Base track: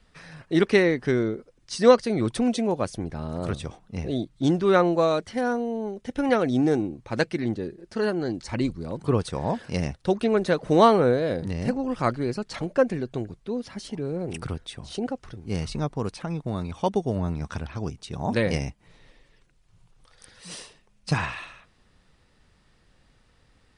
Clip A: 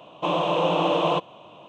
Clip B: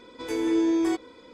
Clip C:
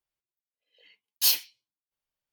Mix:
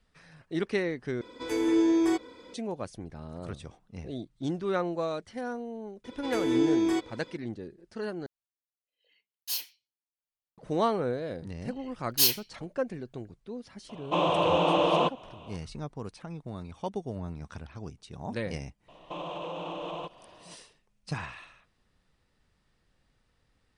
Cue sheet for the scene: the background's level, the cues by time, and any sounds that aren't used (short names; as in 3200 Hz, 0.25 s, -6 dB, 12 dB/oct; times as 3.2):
base track -10 dB
1.21 replace with B -0.5 dB
6.04 add B -2 dB + bell 3200 Hz +4 dB
8.26 replace with C -10.5 dB
10.96 add C -0.5 dB
13.89 add A -2 dB
18.88 add A -7.5 dB + limiter -21.5 dBFS